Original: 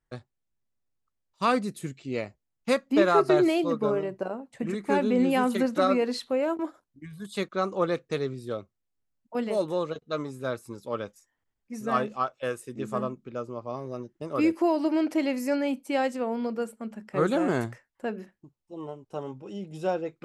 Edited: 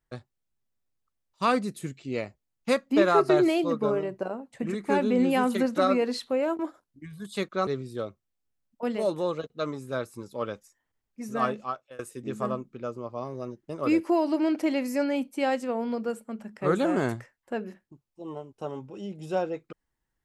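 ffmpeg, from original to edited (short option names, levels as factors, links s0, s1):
-filter_complex "[0:a]asplit=3[s0][s1][s2];[s0]atrim=end=7.672[s3];[s1]atrim=start=8.188:end=12.51,asetpts=PTS-STARTPTS,afade=t=out:st=3.582:d=0.74:c=qsin:silence=0.0630957[s4];[s2]atrim=start=12.51,asetpts=PTS-STARTPTS,afade=t=in:d=0.004:c=hsin:silence=0.0630957[s5];[s4][s5]concat=n=2:v=0:a=1[s6];[s3][s6]acrossfade=d=0.004:c1=hsin:c2=hsin"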